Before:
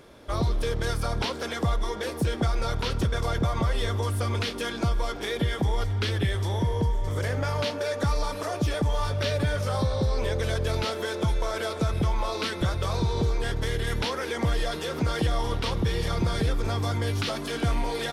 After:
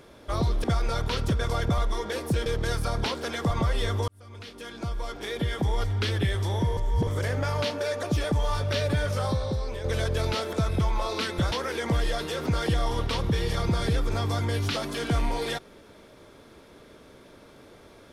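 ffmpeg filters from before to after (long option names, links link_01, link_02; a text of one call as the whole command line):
ffmpeg -i in.wav -filter_complex "[0:a]asplit=12[link_01][link_02][link_03][link_04][link_05][link_06][link_07][link_08][link_09][link_10][link_11][link_12];[link_01]atrim=end=0.642[link_13];[link_02]atrim=start=2.368:end=3.512[link_14];[link_03]atrim=start=1.688:end=2.372[link_15];[link_04]atrim=start=0.638:end=1.692[link_16];[link_05]atrim=start=3.508:end=4.08,asetpts=PTS-STARTPTS,afade=type=out:start_time=0.568:duration=0.004:curve=hsin[link_17];[link_06]atrim=start=4.08:end=6.772,asetpts=PTS-STARTPTS,afade=type=in:duration=1.74[link_18];[link_07]atrim=start=6.768:end=7.072,asetpts=PTS-STARTPTS,areverse[link_19];[link_08]atrim=start=7.068:end=8.032[link_20];[link_09]atrim=start=8.528:end=10.34,asetpts=PTS-STARTPTS,afade=type=out:start_time=1.152:duration=0.66:silence=0.354813[link_21];[link_10]atrim=start=10.34:end=11.032,asetpts=PTS-STARTPTS,afade=type=in:duration=0.004:curve=hsin:silence=0.354813[link_22];[link_11]atrim=start=11.758:end=12.752[link_23];[link_12]atrim=start=14.048[link_24];[link_13][link_14]acrossfade=duration=0.004:curve1=hsin:curve2=hsin[link_25];[link_25][link_15]acrossfade=duration=0.004:curve1=hsin:curve2=hsin[link_26];[link_26][link_16]acrossfade=duration=0.004:curve1=hsin:curve2=hsin[link_27];[link_17][link_18]concat=n=2:v=0:a=1[link_28];[link_27][link_28]acrossfade=duration=0.004:curve1=hsin:curve2=hsin[link_29];[link_29][link_19]acrossfade=duration=0.004:curve1=hsin:curve2=hsin[link_30];[link_30][link_20]acrossfade=duration=0.004:curve1=hsin:curve2=hsin[link_31];[link_21][link_22]concat=n=2:v=0:a=1[link_32];[link_31][link_32]acrossfade=duration=0.004:curve1=hsin:curve2=hsin[link_33];[link_33][link_23]acrossfade=duration=0.004:curve1=hsin:curve2=hsin[link_34];[link_34][link_24]acrossfade=duration=0.004:curve1=hsin:curve2=hsin" out.wav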